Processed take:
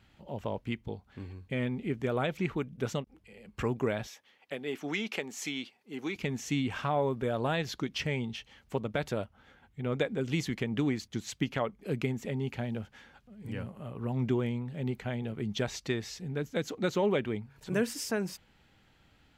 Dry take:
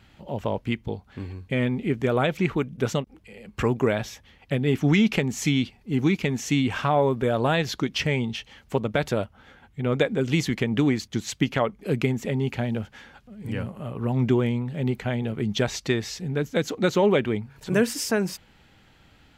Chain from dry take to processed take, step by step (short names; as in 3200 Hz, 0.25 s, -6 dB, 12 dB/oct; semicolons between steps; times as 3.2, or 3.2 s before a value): 4.07–6.16 HPF 390 Hz 12 dB/oct; gain -8 dB